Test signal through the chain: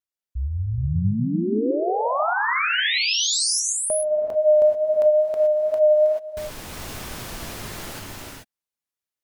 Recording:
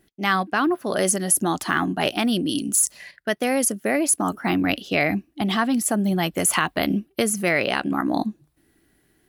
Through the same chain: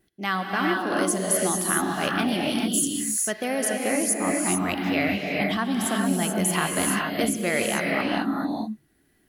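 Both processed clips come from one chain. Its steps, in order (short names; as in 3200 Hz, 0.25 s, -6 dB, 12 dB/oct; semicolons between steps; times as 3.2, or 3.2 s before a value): wow and flutter 19 cents; non-linear reverb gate 0.46 s rising, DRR -1 dB; gain -5.5 dB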